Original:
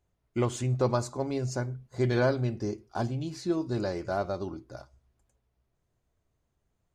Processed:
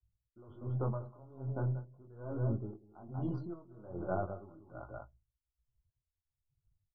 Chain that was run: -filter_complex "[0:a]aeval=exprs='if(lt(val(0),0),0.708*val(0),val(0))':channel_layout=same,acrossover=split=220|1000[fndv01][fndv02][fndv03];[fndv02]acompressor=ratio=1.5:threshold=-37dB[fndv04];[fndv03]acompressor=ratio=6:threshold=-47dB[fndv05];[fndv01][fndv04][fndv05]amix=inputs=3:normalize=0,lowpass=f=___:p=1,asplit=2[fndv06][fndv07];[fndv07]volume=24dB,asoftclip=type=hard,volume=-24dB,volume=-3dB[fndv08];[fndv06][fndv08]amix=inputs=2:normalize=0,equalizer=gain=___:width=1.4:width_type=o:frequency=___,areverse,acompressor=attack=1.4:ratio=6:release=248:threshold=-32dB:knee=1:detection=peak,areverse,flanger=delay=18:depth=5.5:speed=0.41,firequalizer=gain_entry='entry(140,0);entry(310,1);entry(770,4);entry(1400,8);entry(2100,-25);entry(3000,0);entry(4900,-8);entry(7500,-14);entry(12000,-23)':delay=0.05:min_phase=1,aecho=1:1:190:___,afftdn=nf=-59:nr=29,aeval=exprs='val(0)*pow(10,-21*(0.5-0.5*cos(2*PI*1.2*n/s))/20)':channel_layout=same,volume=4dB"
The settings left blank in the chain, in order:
1500, 2.5, 110, 0.422